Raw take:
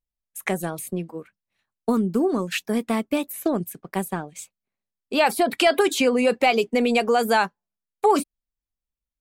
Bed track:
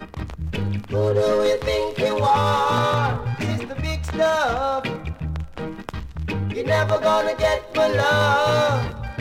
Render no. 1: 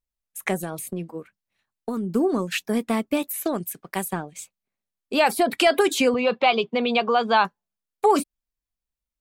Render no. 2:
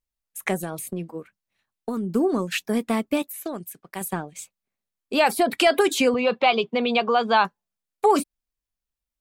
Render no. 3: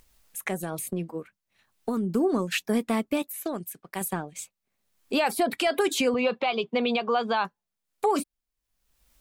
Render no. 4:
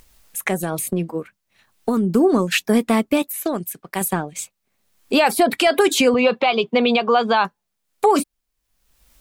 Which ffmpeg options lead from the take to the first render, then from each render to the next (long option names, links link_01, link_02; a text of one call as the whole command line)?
ffmpeg -i in.wav -filter_complex "[0:a]asettb=1/sr,asplit=3[link_01][link_02][link_03];[link_01]atrim=end=0.624[link_04];[link_02]atrim=start=0.62:end=2.12,asetpts=PTS-STARTPTS,afade=type=in:duration=0.004:curve=qsin,afade=type=out:start_time=1.496:duration=0.004:curve=qsin,acompressor=threshold=-24dB:ratio=4:attack=3.2:release=140:knee=1:detection=peak[link_05];[link_03]atrim=start=2.116[link_06];[link_04][link_05]acrossfade=duration=0.004:curve1=hsin:curve2=qsin[link_07];[link_07][link_06]acrossfade=duration=0.004:curve1=qsin:curve2=hsin,asettb=1/sr,asplit=3[link_08][link_09][link_10];[link_08]atrim=end=3.224[link_11];[link_09]atrim=start=3.22:end=4.13,asetpts=PTS-STARTPTS,afade=type=in:duration=0.004:curve=qsin,afade=type=out:start_time=0.906:duration=0.004:curve=qsin,tiltshelf=frequency=880:gain=-4.5[link_12];[link_10]atrim=start=4.126[link_13];[link_11][link_12]acrossfade=duration=0.004:curve1=hsin:curve2=qsin[link_14];[link_14][link_13]acrossfade=duration=0.004:curve1=qsin:curve2=hsin,asettb=1/sr,asplit=3[link_15][link_16][link_17];[link_15]atrim=end=6.144[link_18];[link_16]atrim=start=6.14:end=7.45,asetpts=PTS-STARTPTS,afade=type=in:duration=0.004:curve=qsin,afade=type=out:start_time=1.306:duration=0.004:curve=qsin,highpass=140,equalizer=frequency=150:width_type=q:width=4:gain=8,equalizer=frequency=280:width_type=q:width=4:gain=-9,equalizer=frequency=460:width_type=q:width=4:gain=-3,equalizer=frequency=1100:width_type=q:width=4:gain=8,equalizer=frequency=1900:width_type=q:width=4:gain=-6,equalizer=frequency=3500:width_type=q:width=4:gain=8,lowpass=frequency=4200:width=0.5412,lowpass=frequency=4200:width=1.3066[link_19];[link_17]atrim=start=7.446[link_20];[link_18][link_19]acrossfade=duration=0.004:curve1=hsin:curve2=qsin[link_21];[link_21][link_20]acrossfade=duration=0.004:curve1=qsin:curve2=hsin" out.wav
ffmpeg -i in.wav -filter_complex "[0:a]asplit=3[link_01][link_02][link_03];[link_01]atrim=end=3.222[link_04];[link_02]atrim=start=3.218:end=4.012,asetpts=PTS-STARTPTS,volume=-6dB[link_05];[link_03]atrim=start=4.008[link_06];[link_04][link_05]acrossfade=duration=0.004:curve1=hsin:curve2=hsin[link_07];[link_07][link_06]acrossfade=duration=0.004:curve1=hsin:curve2=hsin" out.wav
ffmpeg -i in.wav -af "alimiter=limit=-15dB:level=0:latency=1:release=271,acompressor=mode=upward:threshold=-42dB:ratio=2.5" out.wav
ffmpeg -i in.wav -af "volume=8.5dB" out.wav